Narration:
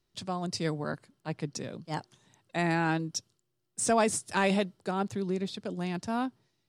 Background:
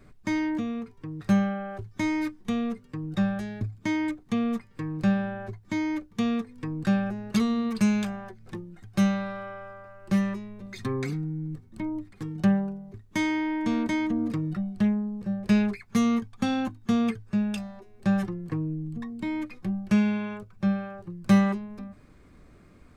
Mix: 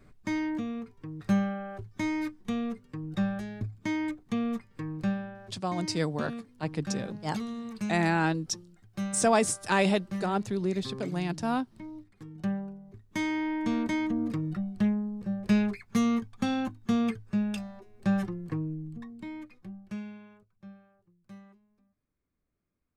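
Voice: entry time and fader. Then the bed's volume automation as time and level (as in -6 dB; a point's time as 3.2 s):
5.35 s, +2.0 dB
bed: 4.91 s -3.5 dB
5.4 s -11 dB
12.22 s -11 dB
13.46 s -2.5 dB
18.57 s -2.5 dB
21.4 s -30.5 dB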